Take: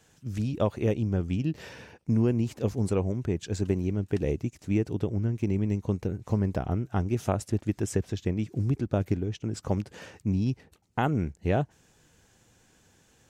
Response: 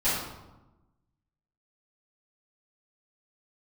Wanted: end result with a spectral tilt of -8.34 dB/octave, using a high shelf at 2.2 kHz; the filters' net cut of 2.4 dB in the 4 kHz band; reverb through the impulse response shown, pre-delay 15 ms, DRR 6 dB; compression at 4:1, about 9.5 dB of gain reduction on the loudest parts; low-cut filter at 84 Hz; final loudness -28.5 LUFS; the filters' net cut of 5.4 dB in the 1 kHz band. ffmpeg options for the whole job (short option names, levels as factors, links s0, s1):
-filter_complex "[0:a]highpass=84,equalizer=f=1000:t=o:g=-8.5,highshelf=f=2200:g=3.5,equalizer=f=4000:t=o:g=-6.5,acompressor=threshold=0.0224:ratio=4,asplit=2[s0][s1];[1:a]atrim=start_sample=2205,adelay=15[s2];[s1][s2]afir=irnorm=-1:irlink=0,volume=0.119[s3];[s0][s3]amix=inputs=2:normalize=0,volume=2.66"